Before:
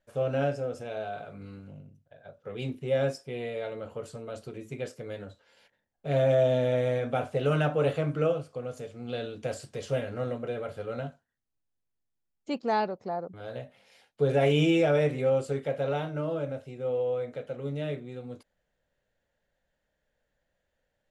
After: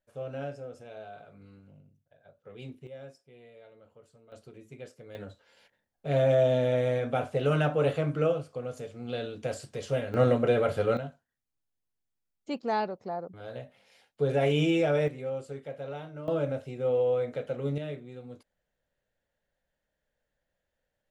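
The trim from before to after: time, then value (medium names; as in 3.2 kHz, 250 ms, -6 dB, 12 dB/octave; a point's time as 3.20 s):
-9 dB
from 2.87 s -18.5 dB
from 4.32 s -9 dB
from 5.15 s 0 dB
from 10.14 s +9.5 dB
from 10.97 s -2 dB
from 15.08 s -9 dB
from 16.28 s +3 dB
from 17.78 s -4 dB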